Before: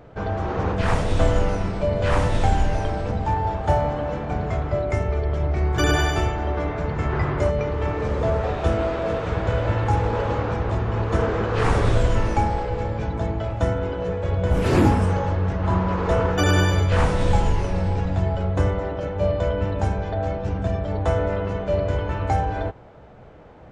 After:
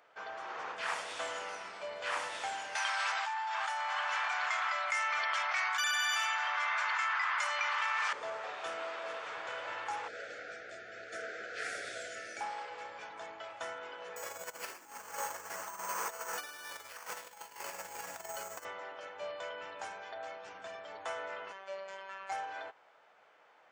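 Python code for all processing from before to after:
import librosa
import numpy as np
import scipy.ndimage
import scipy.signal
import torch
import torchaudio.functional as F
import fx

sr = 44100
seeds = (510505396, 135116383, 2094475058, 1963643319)

y = fx.chain(x, sr, fx.highpass(hz=950.0, slope=24),
    fx.env_flatten(amount_pct=100), at=(2.75, 8.13))
y = fx.chain(y, sr, fx.ellip_bandstop(low_hz=700.0, high_hz=1400.0, order=3, stop_db=50),
    fx.peak_eq(hz=2900.0, db=-8.0, octaves=0.45), at=(10.08, 12.41))
y = fx.chain(y, sr, fx.over_compress(threshold_db=-23.0, ratio=-0.5),
    fx.resample_bad(factor=6, down='filtered', up='hold'), at=(14.16, 18.65))
y = fx.chain(y, sr, fx.peak_eq(hz=220.0, db=-11.5, octaves=0.62),
    fx.robotise(hz=193.0), at=(21.52, 22.32))
y = scipy.signal.sosfilt(scipy.signal.butter(2, 1200.0, 'highpass', fs=sr, output='sos'), y)
y = fx.notch(y, sr, hz=3900.0, q=21.0)
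y = y * librosa.db_to_amplitude(-6.0)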